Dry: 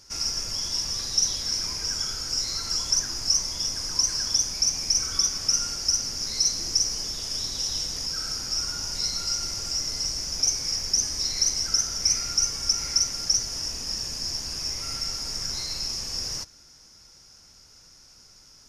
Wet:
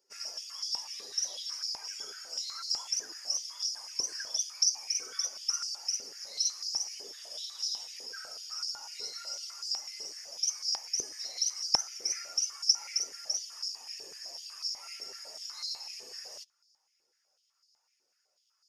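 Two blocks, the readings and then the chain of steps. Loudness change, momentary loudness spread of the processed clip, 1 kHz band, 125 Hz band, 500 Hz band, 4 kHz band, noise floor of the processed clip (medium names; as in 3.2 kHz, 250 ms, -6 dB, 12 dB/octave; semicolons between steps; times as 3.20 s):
-8.5 dB, 13 LU, -6.5 dB, under -25 dB, -8.0 dB, -8.0 dB, -77 dBFS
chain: expander on every frequency bin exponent 1.5; step-sequenced high-pass 8 Hz 420–4700 Hz; trim -8.5 dB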